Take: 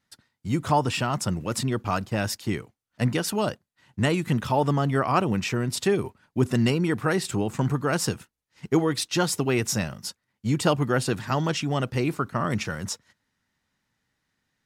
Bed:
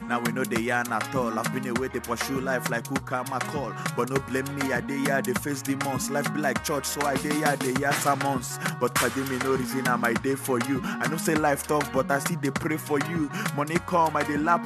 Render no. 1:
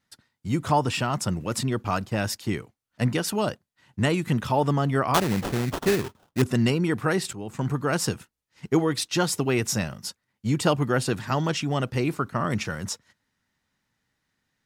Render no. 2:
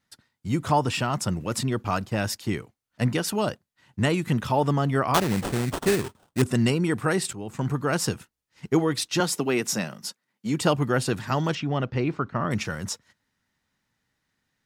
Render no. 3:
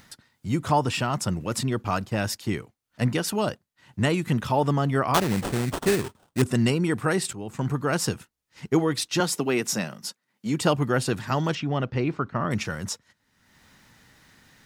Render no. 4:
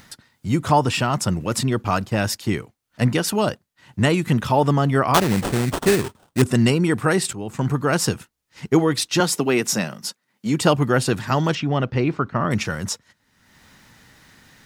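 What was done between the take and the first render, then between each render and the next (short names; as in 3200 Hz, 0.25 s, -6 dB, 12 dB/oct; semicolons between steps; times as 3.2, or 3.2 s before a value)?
5.14–6.42 sample-rate reducer 2200 Hz, jitter 20%; 7.33–7.98 fade in equal-power, from -16 dB
5.33–7.3 bell 8500 Hz +7 dB 0.29 oct; 9.2–10.61 HPF 160 Hz 24 dB/oct; 11.55–12.51 air absorption 180 m
upward compressor, threshold -38 dBFS
gain +5 dB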